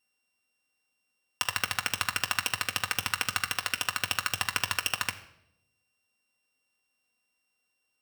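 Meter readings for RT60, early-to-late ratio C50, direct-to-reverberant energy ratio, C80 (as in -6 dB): 0.80 s, 13.5 dB, 4.0 dB, 16.0 dB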